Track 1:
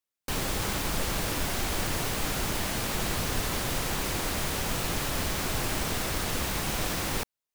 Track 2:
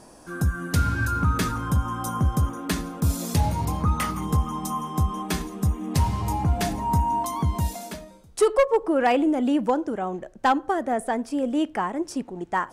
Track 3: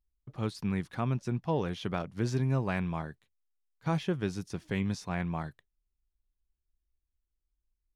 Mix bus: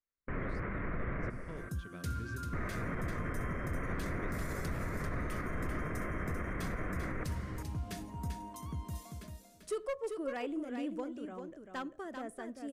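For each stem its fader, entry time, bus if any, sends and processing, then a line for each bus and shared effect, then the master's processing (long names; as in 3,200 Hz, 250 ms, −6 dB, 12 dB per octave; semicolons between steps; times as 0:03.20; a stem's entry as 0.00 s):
−3.0 dB, 0.00 s, muted 0:01.30–0:02.53, no send, echo send −10 dB, Chebyshev low-pass filter 2,100 Hz, order 5
−16.5 dB, 1.30 s, no send, echo send −6.5 dB, no processing
−17.0 dB, 0.00 s, no send, no echo send, gate pattern "..xxxxxxx" 168 BPM −12 dB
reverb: not used
echo: single-tap delay 392 ms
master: parametric band 840 Hz −14 dB 0.33 octaves; brickwall limiter −28 dBFS, peak gain reduction 6 dB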